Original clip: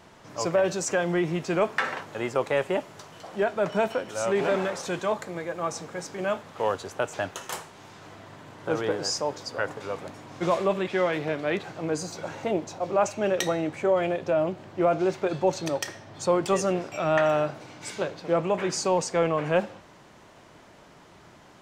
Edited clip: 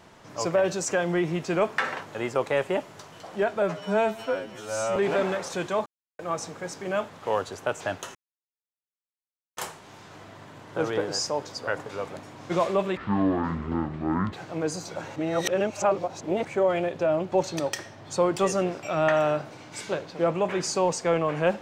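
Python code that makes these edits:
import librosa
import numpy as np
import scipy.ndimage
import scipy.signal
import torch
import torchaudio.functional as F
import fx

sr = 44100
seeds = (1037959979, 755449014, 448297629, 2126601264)

y = fx.edit(x, sr, fx.stretch_span(start_s=3.62, length_s=0.67, factor=2.0),
    fx.silence(start_s=5.19, length_s=0.33),
    fx.insert_silence(at_s=7.48, length_s=1.42),
    fx.speed_span(start_s=10.88, length_s=0.72, speed=0.53),
    fx.reverse_span(start_s=12.43, length_s=1.29),
    fx.cut(start_s=14.59, length_s=0.82), tone=tone)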